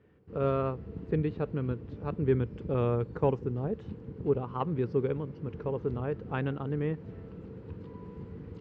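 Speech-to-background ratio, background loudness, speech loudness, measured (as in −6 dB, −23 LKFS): 12.0 dB, −44.5 LKFS, −32.5 LKFS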